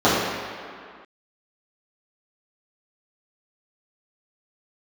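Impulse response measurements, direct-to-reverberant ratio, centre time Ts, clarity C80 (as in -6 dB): -12.5 dB, 115 ms, 1.0 dB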